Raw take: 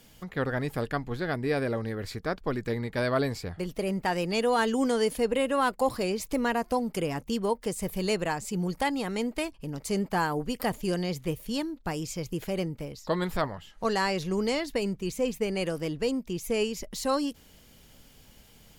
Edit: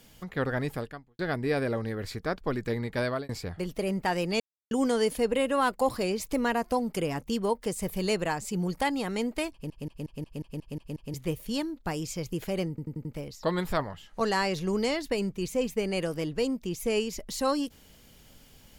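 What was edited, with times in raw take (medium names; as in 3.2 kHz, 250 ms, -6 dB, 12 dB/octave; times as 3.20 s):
0.71–1.19 s: fade out quadratic
2.92–3.29 s: fade out equal-power
4.40–4.71 s: mute
9.52 s: stutter in place 0.18 s, 9 plays
12.69 s: stutter 0.09 s, 5 plays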